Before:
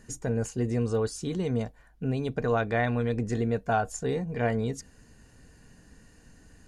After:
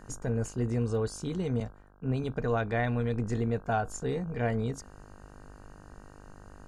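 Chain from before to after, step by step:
low-shelf EQ 78 Hz +9.5 dB
hum with harmonics 50 Hz, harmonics 32, −49 dBFS −3 dB per octave
0:01.60–0:02.24: multiband upward and downward expander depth 70%
level −3.5 dB

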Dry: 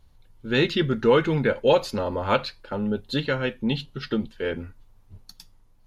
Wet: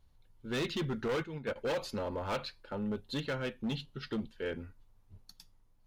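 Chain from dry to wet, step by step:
0:01.08–0:01.56: noise gate −20 dBFS, range −12 dB
hard clipping −21 dBFS, distortion −8 dB
level −9 dB

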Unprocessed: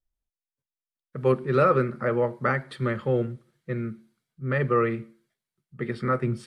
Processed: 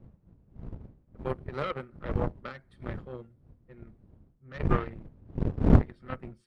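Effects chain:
spectral magnitudes quantised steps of 15 dB
wind on the microphone 140 Hz −23 dBFS
harmonic generator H 4 −11 dB, 6 −10 dB, 7 −18 dB, 8 −19 dB, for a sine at −1 dBFS
level −5.5 dB

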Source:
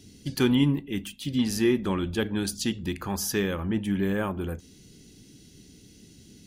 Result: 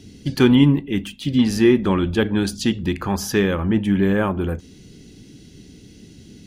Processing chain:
high-shelf EQ 5,800 Hz −12 dB
level +8.5 dB

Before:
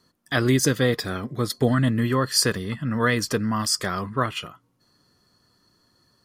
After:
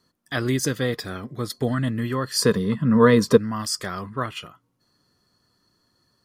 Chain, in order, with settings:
0:02.38–0:03.36: hollow resonant body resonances 200/440/1,000/3,700 Hz, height 11 dB → 16 dB, ringing for 25 ms
level −3.5 dB

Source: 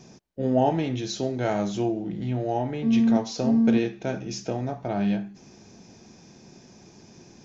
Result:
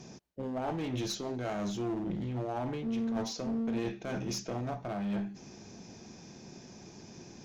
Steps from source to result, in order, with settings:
reversed playback
downward compressor 16 to 1, threshold −28 dBFS, peak gain reduction 13 dB
reversed playback
asymmetric clip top −33.5 dBFS

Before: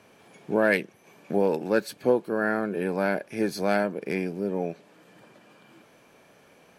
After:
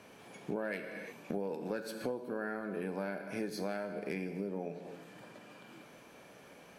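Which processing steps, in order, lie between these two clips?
reverb whose tail is shaped and stops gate 380 ms falling, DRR 8 dB
downward compressor 6 to 1, threshold −35 dBFS, peak gain reduction 17.5 dB

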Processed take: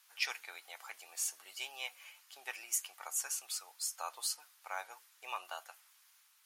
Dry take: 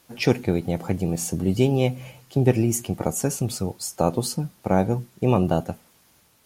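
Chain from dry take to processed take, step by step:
high-pass filter 1,100 Hz 24 dB per octave
level −6.5 dB

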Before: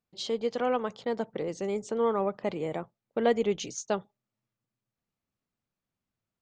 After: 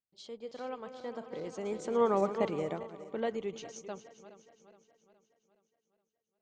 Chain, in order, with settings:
feedback delay that plays each chunk backwards 205 ms, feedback 74%, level −11.5 dB
source passing by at 0:02.26, 7 m/s, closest 2.6 metres

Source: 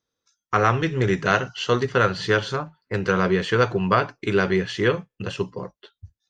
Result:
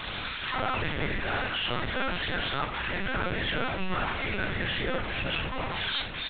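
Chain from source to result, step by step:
linear delta modulator 32 kbit/s, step −29.5 dBFS
low-pass filter 2,800 Hz 12 dB per octave
spectral tilt +4.5 dB per octave
brickwall limiter −22.5 dBFS, peak gain reduction 9.5 dB
automatic gain control gain up to 6 dB
soft clipping −29.5 dBFS, distortion −8 dB
on a send: single-tap delay 71 ms −10.5 dB
on the sum: rectangular room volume 440 cubic metres, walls furnished, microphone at 2.1 metres
linear-prediction vocoder at 8 kHz pitch kept

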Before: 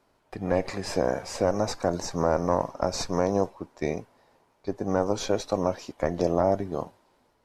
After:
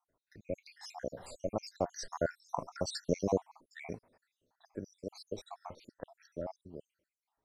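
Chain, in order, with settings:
time-frequency cells dropped at random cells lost 74%
source passing by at 0:02.94, 10 m/s, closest 8.8 metres
level −2 dB

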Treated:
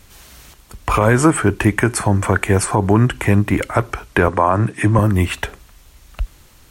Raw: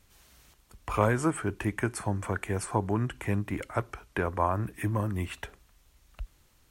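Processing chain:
0:04.28–0:04.99: elliptic band-pass filter 110–9,000 Hz, stop band 40 dB
boost into a limiter +17 dB
level −1 dB

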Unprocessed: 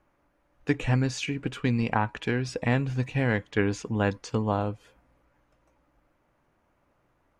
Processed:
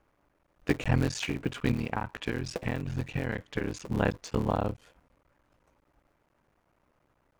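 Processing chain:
sub-harmonics by changed cycles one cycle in 3, muted
0:01.72–0:03.80: downward compressor, threshold −27 dBFS, peak gain reduction 8 dB

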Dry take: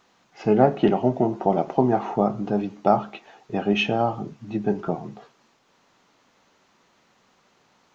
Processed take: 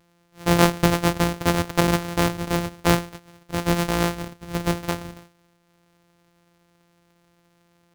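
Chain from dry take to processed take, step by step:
samples sorted by size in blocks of 256 samples

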